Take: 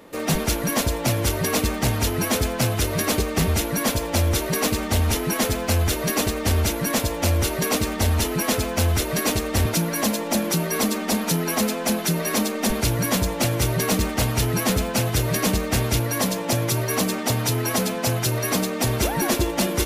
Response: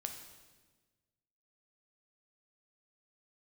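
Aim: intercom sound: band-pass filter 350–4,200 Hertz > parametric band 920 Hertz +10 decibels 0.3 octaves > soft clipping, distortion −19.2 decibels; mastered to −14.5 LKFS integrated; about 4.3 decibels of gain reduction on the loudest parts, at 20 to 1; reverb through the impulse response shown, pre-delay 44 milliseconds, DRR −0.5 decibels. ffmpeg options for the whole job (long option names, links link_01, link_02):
-filter_complex "[0:a]acompressor=threshold=-21dB:ratio=20,asplit=2[link_01][link_02];[1:a]atrim=start_sample=2205,adelay=44[link_03];[link_02][link_03]afir=irnorm=-1:irlink=0,volume=2dB[link_04];[link_01][link_04]amix=inputs=2:normalize=0,highpass=350,lowpass=4200,equalizer=frequency=920:width_type=o:width=0.3:gain=10,asoftclip=threshold=-17.5dB,volume=11.5dB"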